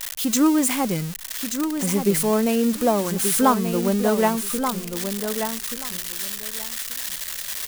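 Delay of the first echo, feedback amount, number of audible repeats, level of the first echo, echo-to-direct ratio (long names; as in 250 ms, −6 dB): 1,181 ms, 17%, 2, −7.5 dB, −7.5 dB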